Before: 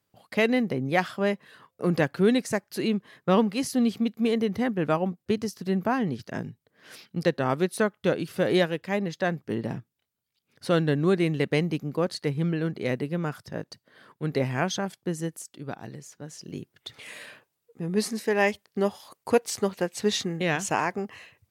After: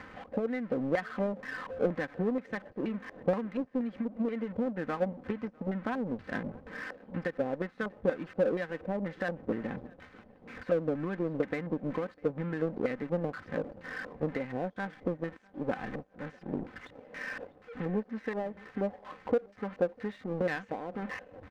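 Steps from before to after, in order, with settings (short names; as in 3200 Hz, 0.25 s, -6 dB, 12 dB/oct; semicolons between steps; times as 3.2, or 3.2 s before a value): zero-crossing step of -32.5 dBFS; high shelf 4400 Hz +11.5 dB; comb 3.9 ms, depth 56%; sample leveller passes 1; compressor 12:1, threshold -26 dBFS, peak gain reduction 16 dB; LFO low-pass square 2.1 Hz 570–1800 Hz; tape spacing loss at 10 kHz 23 dB; on a send: feedback echo 0.65 s, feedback 37%, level -20.5 dB; on the sum: power-law curve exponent 1.4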